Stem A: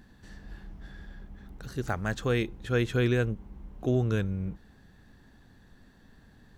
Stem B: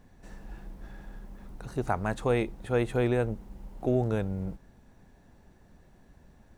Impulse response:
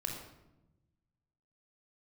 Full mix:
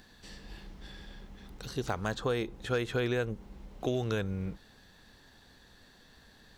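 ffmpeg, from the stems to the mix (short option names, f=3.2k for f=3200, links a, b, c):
-filter_complex "[0:a]asoftclip=type=hard:threshold=-16.5dB,equalizer=f=500:t=o:w=1:g=7,equalizer=f=1k:t=o:w=1:g=3,equalizer=f=4k:t=o:w=1:g=6,volume=-1dB[a];[1:a]lowpass=5.8k,volume=-3.5dB[b];[a][b]amix=inputs=2:normalize=0,tiltshelf=f=1.4k:g=-6.5,acrossover=split=1900|5100[c][d][e];[c]acompressor=threshold=-28dB:ratio=4[f];[d]acompressor=threshold=-46dB:ratio=4[g];[e]acompressor=threshold=-53dB:ratio=4[h];[f][g][h]amix=inputs=3:normalize=0"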